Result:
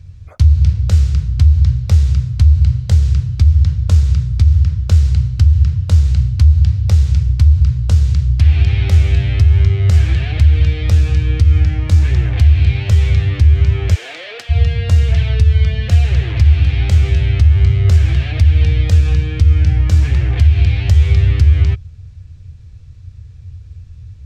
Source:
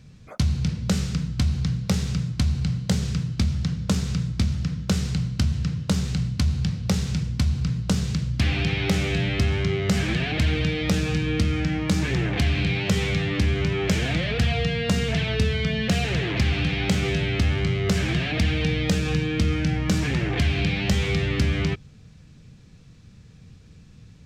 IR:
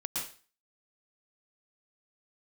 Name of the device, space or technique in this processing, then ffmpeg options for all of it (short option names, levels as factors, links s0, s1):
car stereo with a boomy subwoofer: -filter_complex "[0:a]lowshelf=f=130:t=q:w=3:g=13.5,alimiter=limit=0.891:level=0:latency=1:release=143,asplit=3[s0][s1][s2];[s0]afade=t=out:st=13.94:d=0.02[s3];[s1]highpass=f=380:w=0.5412,highpass=f=380:w=1.3066,afade=t=in:st=13.94:d=0.02,afade=t=out:st=14.49:d=0.02[s4];[s2]afade=t=in:st=14.49:d=0.02[s5];[s3][s4][s5]amix=inputs=3:normalize=0,volume=0.891"